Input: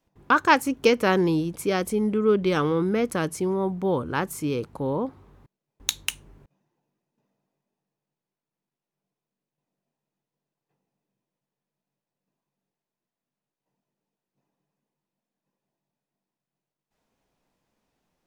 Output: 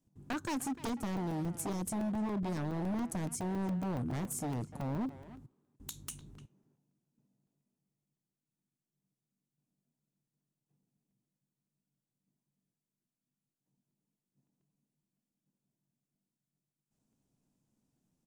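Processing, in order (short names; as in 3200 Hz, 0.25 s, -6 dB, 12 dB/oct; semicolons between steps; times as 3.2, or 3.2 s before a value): graphic EQ 125/250/500/1000/2000/4000/8000 Hz +10/+8/-5/-5/-8/-4/+8 dB; compressor 12:1, threshold -21 dBFS, peak gain reduction 9 dB; wavefolder -22.5 dBFS; speakerphone echo 0.3 s, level -11 dB; crackling interface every 0.14 s, samples 128, zero, from 0.33; gain -7.5 dB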